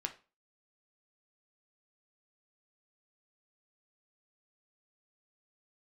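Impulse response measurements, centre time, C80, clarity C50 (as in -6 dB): 9 ms, 20.0 dB, 14.0 dB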